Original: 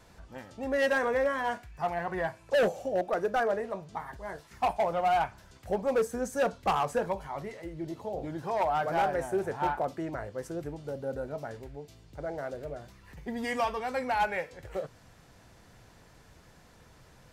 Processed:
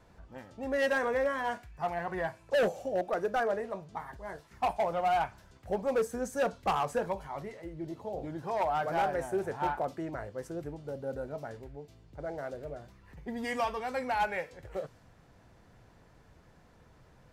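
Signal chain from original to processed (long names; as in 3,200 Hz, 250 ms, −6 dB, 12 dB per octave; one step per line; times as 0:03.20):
one half of a high-frequency compander decoder only
level −2 dB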